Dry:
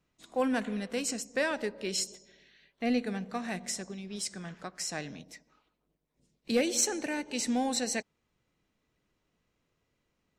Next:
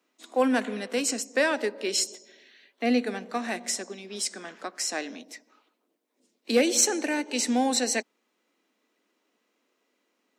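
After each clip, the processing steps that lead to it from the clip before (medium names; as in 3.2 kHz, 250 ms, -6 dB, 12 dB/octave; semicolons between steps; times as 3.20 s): steep high-pass 230 Hz 48 dB/octave; trim +6 dB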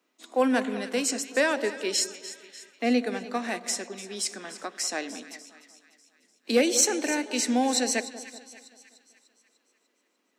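two-band feedback delay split 1.4 kHz, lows 192 ms, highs 297 ms, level -14.5 dB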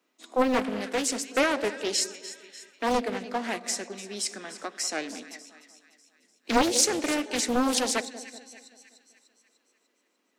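loudspeaker Doppler distortion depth 0.91 ms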